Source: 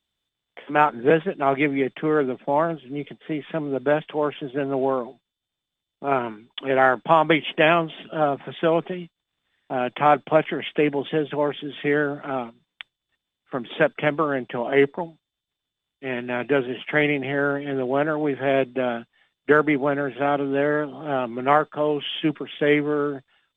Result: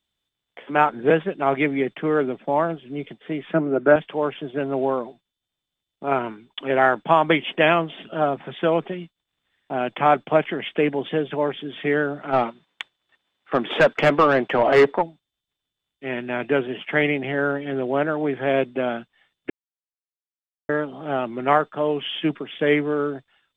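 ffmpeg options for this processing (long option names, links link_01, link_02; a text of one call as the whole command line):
ffmpeg -i in.wav -filter_complex "[0:a]asettb=1/sr,asplit=3[link_01][link_02][link_03];[link_01]atrim=end=3.534[link_04];[link_02]atrim=start=3.53:end=3.96,asetpts=PTS-STARTPTS,afade=type=in:duration=0.004:curve=qsin,afade=type=out:start_time=0.426:duration=0.004:curve=qsin,highpass=120,equalizer=frequency=170:width_type=q:width=4:gain=8,equalizer=frequency=340:width_type=q:width=4:gain=10,equalizer=frequency=620:width_type=q:width=4:gain=6,equalizer=frequency=1400:width_type=q:width=4:gain=10,lowpass=frequency=2700:width=0.5412,lowpass=frequency=2700:width=1.3066[link_05];[link_03]atrim=start=3.956[link_06];[link_04][link_05]acrossfade=duration=0.004:curve1=hsin:curve2=qsin[link_07];[link_07][link_06]acrossfade=duration=0.004:curve1=qsin:curve2=hsin,asplit=3[link_08][link_09][link_10];[link_08]afade=type=out:start_time=12.32:duration=0.02[link_11];[link_09]asplit=2[link_12][link_13];[link_13]highpass=frequency=720:poles=1,volume=21dB,asoftclip=type=tanh:threshold=-5dB[link_14];[link_12][link_14]amix=inputs=2:normalize=0,lowpass=frequency=1500:poles=1,volume=-6dB,afade=type=in:start_time=12.32:duration=0.02,afade=type=out:start_time=15.01:duration=0.02[link_15];[link_10]afade=type=in:start_time=15.01:duration=0.02[link_16];[link_11][link_15][link_16]amix=inputs=3:normalize=0,asplit=3[link_17][link_18][link_19];[link_17]atrim=end=19.5,asetpts=PTS-STARTPTS,afade=type=out:start_time=19.496:duration=0.004:curve=hsin[link_20];[link_18]atrim=start=19.5:end=20.69,asetpts=PTS-STARTPTS,volume=0[link_21];[link_19]atrim=start=20.69,asetpts=PTS-STARTPTS,afade=type=in:duration=0.004:curve=hsin[link_22];[link_20][link_21][link_22]concat=n=3:v=0:a=1" out.wav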